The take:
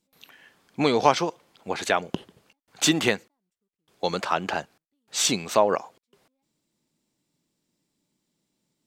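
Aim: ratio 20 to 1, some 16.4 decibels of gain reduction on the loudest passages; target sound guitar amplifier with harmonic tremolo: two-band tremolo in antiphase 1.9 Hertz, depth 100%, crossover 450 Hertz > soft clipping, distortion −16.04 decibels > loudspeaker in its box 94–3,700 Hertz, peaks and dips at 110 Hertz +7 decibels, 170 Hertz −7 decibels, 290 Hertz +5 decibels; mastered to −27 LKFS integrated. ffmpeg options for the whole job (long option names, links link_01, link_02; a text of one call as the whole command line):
ffmpeg -i in.wav -filter_complex "[0:a]acompressor=threshold=-29dB:ratio=20,acrossover=split=450[link_01][link_02];[link_01]aeval=exprs='val(0)*(1-1/2+1/2*cos(2*PI*1.9*n/s))':channel_layout=same[link_03];[link_02]aeval=exprs='val(0)*(1-1/2-1/2*cos(2*PI*1.9*n/s))':channel_layout=same[link_04];[link_03][link_04]amix=inputs=2:normalize=0,asoftclip=threshold=-26dB,highpass=94,equalizer=frequency=110:width_type=q:width=4:gain=7,equalizer=frequency=170:width_type=q:width=4:gain=-7,equalizer=frequency=290:width_type=q:width=4:gain=5,lowpass=frequency=3700:width=0.5412,lowpass=frequency=3700:width=1.3066,volume=16dB" out.wav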